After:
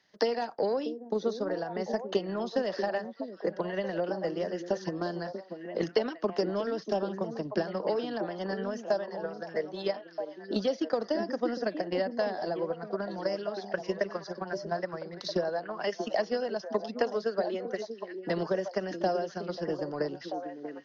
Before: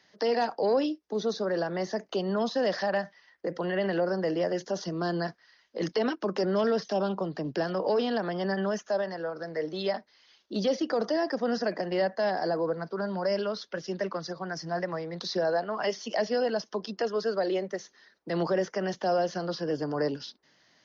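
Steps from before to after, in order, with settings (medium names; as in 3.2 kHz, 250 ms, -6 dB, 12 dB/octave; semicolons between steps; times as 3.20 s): transient shaper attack +11 dB, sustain -1 dB; repeats whose band climbs or falls 638 ms, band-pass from 290 Hz, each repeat 1.4 oct, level -4 dB; trim -7 dB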